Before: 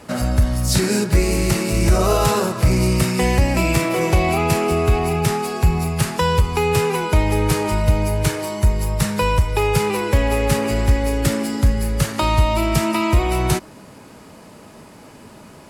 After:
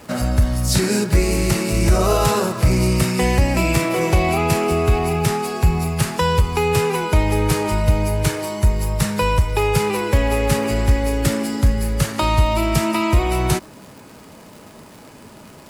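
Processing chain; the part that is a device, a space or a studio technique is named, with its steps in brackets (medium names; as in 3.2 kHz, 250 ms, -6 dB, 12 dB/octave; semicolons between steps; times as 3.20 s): vinyl LP (crackle 120 per s -33 dBFS; white noise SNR 43 dB)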